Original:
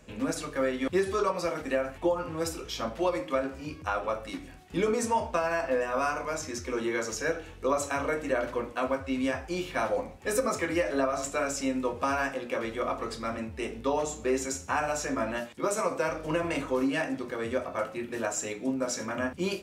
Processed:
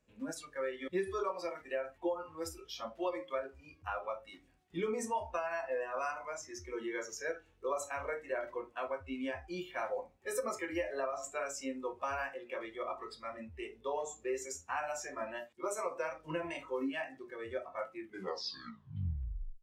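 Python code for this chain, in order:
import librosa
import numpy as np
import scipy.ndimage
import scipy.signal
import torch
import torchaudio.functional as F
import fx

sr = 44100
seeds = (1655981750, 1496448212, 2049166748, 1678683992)

y = fx.tape_stop_end(x, sr, length_s=1.69)
y = fx.noise_reduce_blind(y, sr, reduce_db=14)
y = y * librosa.db_to_amplitude(-8.0)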